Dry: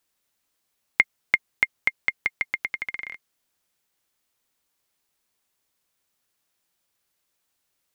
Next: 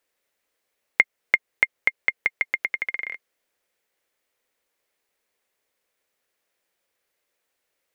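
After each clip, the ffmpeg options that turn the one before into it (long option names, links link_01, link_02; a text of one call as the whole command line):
ffmpeg -i in.wav -filter_complex "[0:a]equalizer=frequency=125:width_type=o:width=1:gain=-4,equalizer=frequency=500:width_type=o:width=1:gain=12,equalizer=frequency=2000:width_type=o:width=1:gain=8,asplit=2[link_01][link_02];[link_02]acompressor=threshold=-18dB:ratio=6,volume=-3dB[link_03];[link_01][link_03]amix=inputs=2:normalize=0,volume=-8.5dB" out.wav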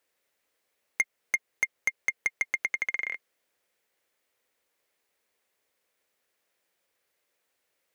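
ffmpeg -i in.wav -af "highpass=47,asoftclip=type=tanh:threshold=-17.5dB" out.wav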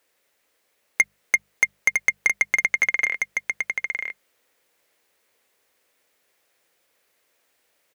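ffmpeg -i in.wav -af "bandreject=frequency=50:width_type=h:width=6,bandreject=frequency=100:width_type=h:width=6,bandreject=frequency=150:width_type=h:width=6,bandreject=frequency=200:width_type=h:width=6,aecho=1:1:957:0.562,volume=8dB" out.wav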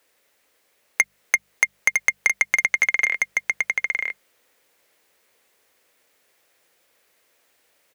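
ffmpeg -i in.wav -filter_complex "[0:a]acrossover=split=400|2500[link_01][link_02][link_03];[link_01]acompressor=threshold=-55dB:ratio=4[link_04];[link_02]acompressor=threshold=-24dB:ratio=4[link_05];[link_03]acompressor=threshold=-23dB:ratio=4[link_06];[link_04][link_05][link_06]amix=inputs=3:normalize=0,volume=4dB" out.wav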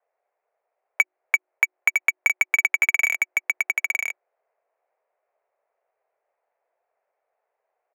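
ffmpeg -i in.wav -af "highpass=frequency=240:width_type=q:width=0.5412,highpass=frequency=240:width_type=q:width=1.307,lowpass=frequency=2500:width_type=q:width=0.5176,lowpass=frequency=2500:width_type=q:width=0.7071,lowpass=frequency=2500:width_type=q:width=1.932,afreqshift=170,adynamicsmooth=sensitivity=4.5:basefreq=750" out.wav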